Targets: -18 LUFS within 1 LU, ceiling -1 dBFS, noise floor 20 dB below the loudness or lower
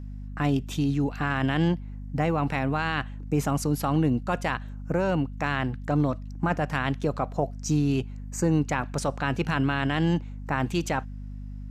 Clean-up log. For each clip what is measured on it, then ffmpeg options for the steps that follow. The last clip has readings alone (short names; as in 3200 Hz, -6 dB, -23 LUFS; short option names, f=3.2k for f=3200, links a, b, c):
hum 50 Hz; harmonics up to 250 Hz; hum level -35 dBFS; loudness -27.0 LUFS; peak -11.5 dBFS; loudness target -18.0 LUFS
-> -af "bandreject=f=50:t=h:w=6,bandreject=f=100:t=h:w=6,bandreject=f=150:t=h:w=6,bandreject=f=200:t=h:w=6,bandreject=f=250:t=h:w=6"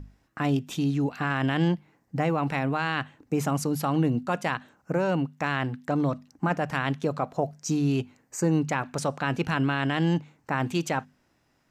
hum none; loudness -27.5 LUFS; peak -11.5 dBFS; loudness target -18.0 LUFS
-> -af "volume=9.5dB"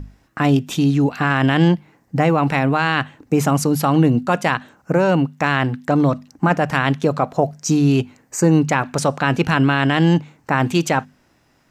loudness -18.0 LUFS; peak -2.0 dBFS; noise floor -59 dBFS